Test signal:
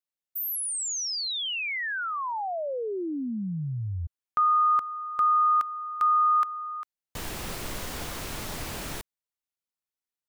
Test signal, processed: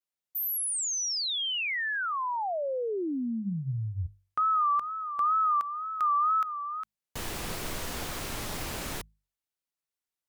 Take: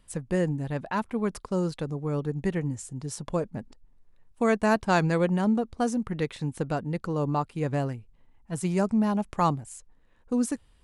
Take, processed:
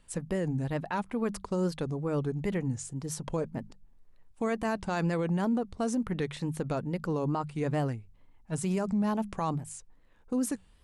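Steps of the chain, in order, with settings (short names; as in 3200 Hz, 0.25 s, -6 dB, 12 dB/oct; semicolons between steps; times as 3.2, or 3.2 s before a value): notches 50/100/150/200 Hz; limiter -22 dBFS; wow and flutter 2.1 Hz 100 cents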